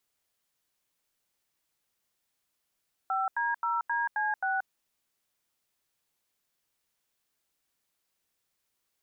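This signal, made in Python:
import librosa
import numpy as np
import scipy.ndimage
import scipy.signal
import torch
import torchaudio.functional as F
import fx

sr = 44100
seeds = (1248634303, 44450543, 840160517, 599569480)

y = fx.dtmf(sr, digits='5D0DC6', tone_ms=180, gap_ms=85, level_db=-29.0)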